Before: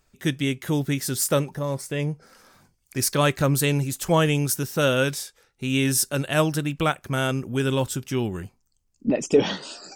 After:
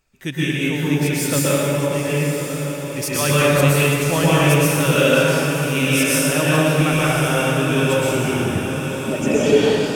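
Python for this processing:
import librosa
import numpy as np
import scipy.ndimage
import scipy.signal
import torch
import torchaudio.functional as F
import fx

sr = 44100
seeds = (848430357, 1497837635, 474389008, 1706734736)

y = fx.peak_eq(x, sr, hz=2500.0, db=6.5, octaves=0.41)
y = fx.echo_diffused(y, sr, ms=1043, feedback_pct=55, wet_db=-8)
y = fx.rev_plate(y, sr, seeds[0], rt60_s=2.7, hf_ratio=0.6, predelay_ms=105, drr_db=-8.5)
y = y * librosa.db_to_amplitude(-3.5)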